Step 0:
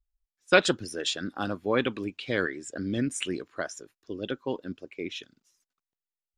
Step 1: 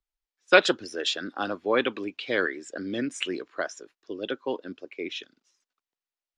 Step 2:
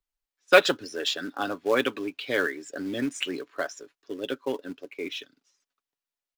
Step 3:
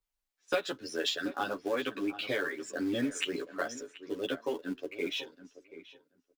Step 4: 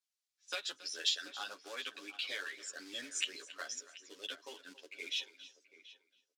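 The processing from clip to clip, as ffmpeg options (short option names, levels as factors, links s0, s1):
-filter_complex "[0:a]acrossover=split=260 6700:gain=0.158 1 0.0794[s0][s1][s2];[s0][s1][s2]amix=inputs=3:normalize=0,volume=1.41"
-filter_complex "[0:a]aecho=1:1:7.1:0.42,asplit=2[s0][s1];[s1]acrusher=bits=2:mode=log:mix=0:aa=0.000001,volume=0.376[s2];[s0][s2]amix=inputs=2:normalize=0,volume=0.668"
-filter_complex "[0:a]acompressor=threshold=0.0398:ratio=8,asplit=2[s0][s1];[s1]adelay=731,lowpass=f=2100:p=1,volume=0.2,asplit=2[s2][s3];[s3]adelay=731,lowpass=f=2100:p=1,volume=0.16[s4];[s0][s2][s4]amix=inputs=3:normalize=0,asplit=2[s5][s6];[s6]adelay=11.1,afreqshift=2.5[s7];[s5][s7]amix=inputs=2:normalize=1,volume=1.41"
-af "bandpass=f=5400:t=q:w=0.97:csg=0,aecho=1:1:276:0.141,volume=1.41"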